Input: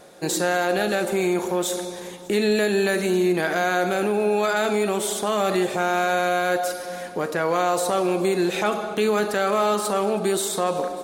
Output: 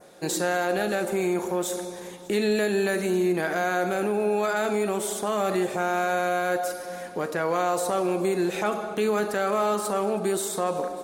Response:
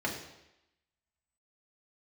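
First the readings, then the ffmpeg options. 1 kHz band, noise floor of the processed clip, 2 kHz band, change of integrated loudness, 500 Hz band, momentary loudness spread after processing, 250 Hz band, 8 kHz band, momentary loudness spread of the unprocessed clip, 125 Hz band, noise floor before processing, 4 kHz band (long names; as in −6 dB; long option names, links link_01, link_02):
−3.0 dB, −39 dBFS, −4.0 dB, −3.5 dB, −3.0 dB, 5 LU, −3.0 dB, −3.5 dB, 5 LU, −3.0 dB, −35 dBFS, −6.5 dB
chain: -af "adynamicequalizer=threshold=0.00562:dfrequency=3600:dqfactor=1.2:tfrequency=3600:tqfactor=1.2:attack=5:release=100:ratio=0.375:range=2.5:mode=cutabove:tftype=bell,volume=-3dB"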